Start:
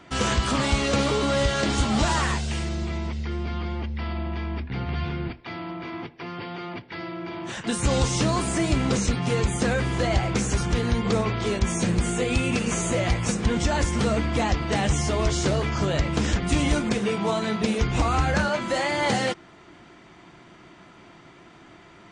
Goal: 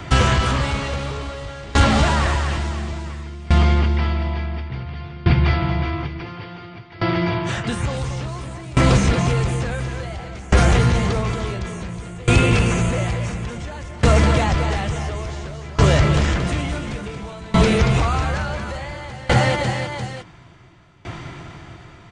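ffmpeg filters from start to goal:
-filter_complex "[0:a]asplit=2[s0][s1];[s1]aecho=0:1:229|546|894:0.501|0.282|0.251[s2];[s0][s2]amix=inputs=2:normalize=0,apsyclip=10,lowshelf=f=160:t=q:w=1.5:g=9.5,acrossover=split=160|3300[s3][s4][s5];[s3]acompressor=threshold=0.355:ratio=4[s6];[s4]acompressor=threshold=0.447:ratio=4[s7];[s5]acompressor=threshold=0.0562:ratio=4[s8];[s6][s7][s8]amix=inputs=3:normalize=0,aeval=exprs='val(0)*pow(10,-23*if(lt(mod(0.57*n/s,1),2*abs(0.57)/1000),1-mod(0.57*n/s,1)/(2*abs(0.57)/1000),(mod(0.57*n/s,1)-2*abs(0.57)/1000)/(1-2*abs(0.57)/1000))/20)':c=same,volume=0.531"

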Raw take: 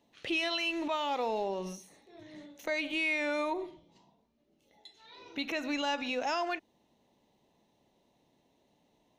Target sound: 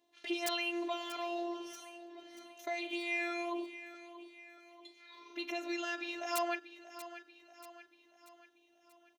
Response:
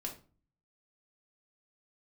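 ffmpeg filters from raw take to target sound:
-af "afftfilt=real='hypot(re,im)*cos(PI*b)':imag='0':win_size=512:overlap=0.75,aeval=exprs='(mod(11.2*val(0)+1,2)-1)/11.2':c=same,highpass=f=240:p=1,aecho=1:1:635|1270|1905|2540|3175:0.211|0.106|0.0528|0.0264|0.0132"

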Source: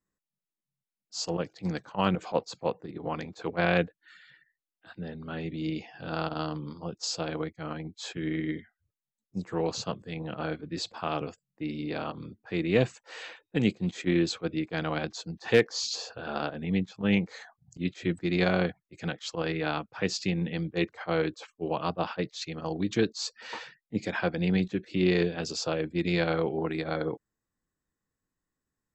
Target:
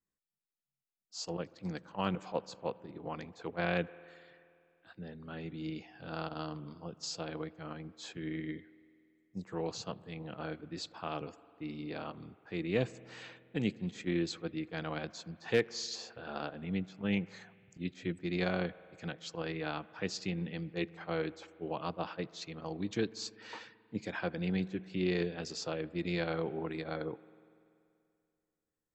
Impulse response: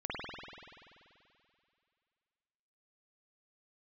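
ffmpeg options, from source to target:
-filter_complex "[0:a]asplit=2[s0][s1];[s1]lowpass=3500[s2];[1:a]atrim=start_sample=2205,adelay=80[s3];[s2][s3]afir=irnorm=-1:irlink=0,volume=0.0596[s4];[s0][s4]amix=inputs=2:normalize=0,volume=0.422"

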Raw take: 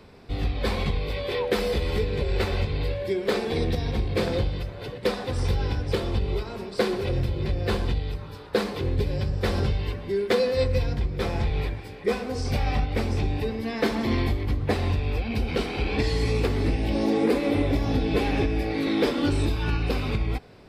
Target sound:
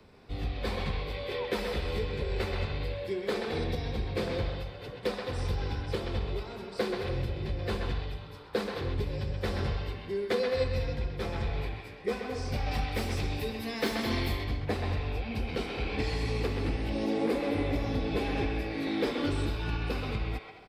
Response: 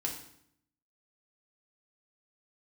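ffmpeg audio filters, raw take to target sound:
-filter_complex "[0:a]asettb=1/sr,asplit=3[s0][s1][s2];[s0]atrim=end=12.714[s3];[s1]atrim=start=12.71:end=14.44,asetpts=PTS-STARTPTS,afade=t=in:d=0.004:c=qsin,afade=t=out:st=1.726:d=0.004:c=qsin,aemphasis=mode=production:type=75kf[s4];[s2]atrim=start=14.436[s5];[s3][s4]acrossfade=d=0.004:c1=hsin:c2=qsin[s6];[s6][s5]acrossfade=d=0.004:c1=qsin:c2=hsin,acrossover=split=260|430|5200[s7][s8][s9][s10];[s9]aecho=1:1:130|214.5|269.4|305.1|328.3:0.631|0.398|0.251|0.158|0.1[s11];[s10]asoftclip=type=tanh:threshold=0.0141[s12];[s7][s8][s11][s12]amix=inputs=4:normalize=0,volume=0.447"

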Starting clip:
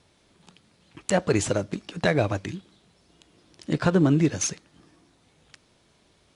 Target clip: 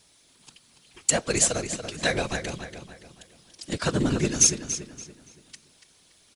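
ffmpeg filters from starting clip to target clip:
-filter_complex "[0:a]afftfilt=real='hypot(re,im)*cos(2*PI*random(0))':imag='hypot(re,im)*sin(2*PI*random(1))':win_size=512:overlap=0.75,crystalizer=i=6:c=0,asplit=2[s0][s1];[s1]adelay=285,lowpass=f=4600:p=1,volume=0.398,asplit=2[s2][s3];[s3]adelay=285,lowpass=f=4600:p=1,volume=0.4,asplit=2[s4][s5];[s5]adelay=285,lowpass=f=4600:p=1,volume=0.4,asplit=2[s6][s7];[s7]adelay=285,lowpass=f=4600:p=1,volume=0.4,asplit=2[s8][s9];[s9]adelay=285,lowpass=f=4600:p=1,volume=0.4[s10];[s0][s2][s4][s6][s8][s10]amix=inputs=6:normalize=0"

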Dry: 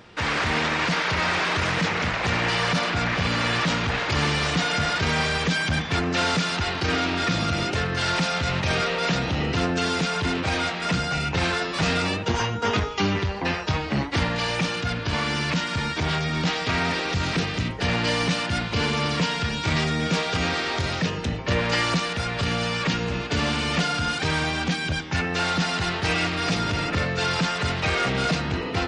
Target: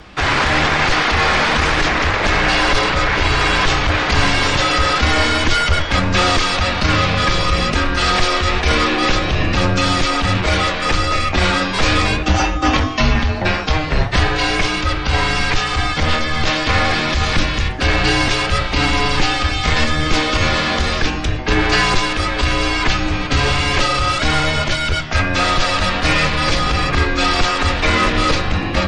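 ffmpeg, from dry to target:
-af "flanger=delay=9.3:depth=6.6:regen=82:speed=1.6:shape=triangular,acontrast=72,afreqshift=-160,volume=2.11"

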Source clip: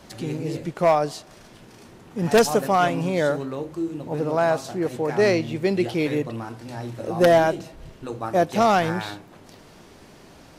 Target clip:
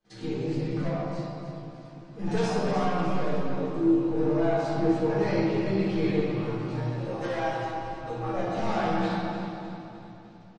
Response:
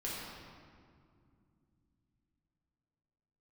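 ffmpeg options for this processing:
-filter_complex "[0:a]asettb=1/sr,asplit=3[s0][s1][s2];[s0]atrim=end=2.824[s3];[s1]atrim=start=2.82:end=3.55,asetpts=PTS-STARTPTS,afade=t=in:d=0.004:c=qsin,afade=t=out:st=0.726:d=0.004:c=qsin,aeval=exprs='if(lt(val(0),0),0.251*val(0),val(0))':c=same[s4];[s2]atrim=start=3.546[s5];[s3][s4]acrossfade=d=0.004:c1=hsin:c2=qsin[s6];[s6][s5]acrossfade=d=0.004:c1=qsin:c2=hsin,asplit=3[s7][s8][s9];[s7]afade=t=out:st=7.09:d=0.02[s10];[s8]highpass=610,afade=t=in:st=7.09:d=0.02,afade=t=out:st=7.79:d=0.02[s11];[s9]afade=t=in:st=7.79:d=0.02[s12];[s10][s11][s12]amix=inputs=3:normalize=0,agate=range=0.0562:threshold=0.00562:ratio=16:detection=peak,lowpass=5900,asplit=3[s13][s14][s15];[s13]afade=t=out:st=0.86:d=0.02[s16];[s14]acompressor=threshold=0.00794:ratio=2,afade=t=in:st=0.86:d=0.02,afade=t=out:st=2.18:d=0.02[s17];[s15]afade=t=in:st=2.18:d=0.02[s18];[s16][s17][s18]amix=inputs=3:normalize=0,alimiter=limit=0.178:level=0:latency=1:release=302,flanger=delay=5.6:depth=2.2:regen=-31:speed=0.99:shape=triangular,aeval=exprs='(tanh(12.6*val(0)+0.15)-tanh(0.15))/12.6':c=same,asplit=2[s19][s20];[s20]adelay=15,volume=0.631[s21];[s19][s21]amix=inputs=2:normalize=0,aecho=1:1:303|606|909|1212|1515|1818:0.316|0.161|0.0823|0.0419|0.0214|0.0109[s22];[1:a]atrim=start_sample=2205[s23];[s22][s23]afir=irnorm=-1:irlink=0,volume=0.841" -ar 44100 -c:a libmp3lame -b:a 48k

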